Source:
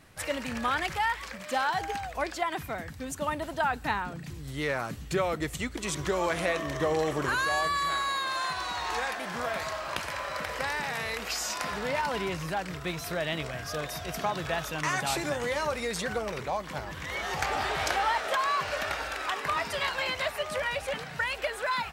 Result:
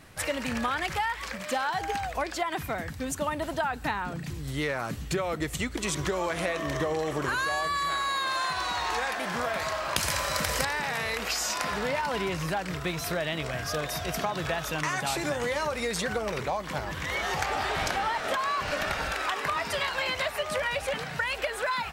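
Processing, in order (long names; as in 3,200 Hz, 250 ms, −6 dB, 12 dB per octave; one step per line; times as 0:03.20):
0:17.75–0:19.12: sub-octave generator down 1 octave, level +1 dB
downward compressor, threshold −30 dBFS, peak gain reduction 8 dB
0:09.96–0:10.65: bass and treble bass +8 dB, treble +13 dB
level +4.5 dB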